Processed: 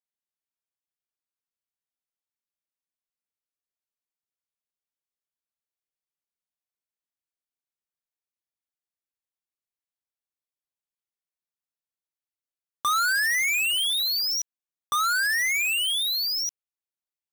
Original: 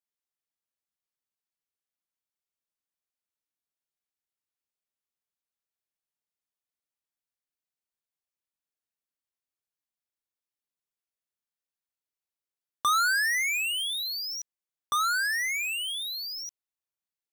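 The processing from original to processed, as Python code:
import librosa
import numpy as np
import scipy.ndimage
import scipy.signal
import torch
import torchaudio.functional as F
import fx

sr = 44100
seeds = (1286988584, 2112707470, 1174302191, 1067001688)

y = fx.leveller(x, sr, passes=3)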